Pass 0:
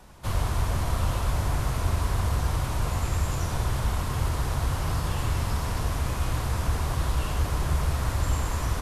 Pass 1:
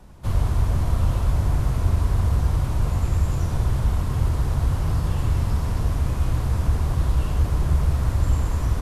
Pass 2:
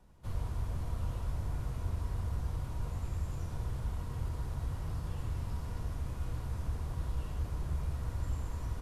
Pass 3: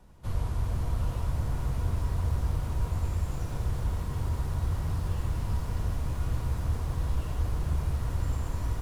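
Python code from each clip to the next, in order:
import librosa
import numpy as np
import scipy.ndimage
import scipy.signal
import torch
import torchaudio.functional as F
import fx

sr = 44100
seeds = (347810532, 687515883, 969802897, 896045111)

y1 = fx.low_shelf(x, sr, hz=480.0, db=10.5)
y1 = y1 * 10.0 ** (-4.5 / 20.0)
y2 = fx.comb_fb(y1, sr, f0_hz=480.0, decay_s=0.5, harmonics='all', damping=0.0, mix_pct=70)
y2 = y2 * 10.0 ** (-5.0 / 20.0)
y3 = fx.echo_crushed(y2, sr, ms=387, feedback_pct=80, bits=10, wet_db=-10)
y3 = y3 * 10.0 ** (6.0 / 20.0)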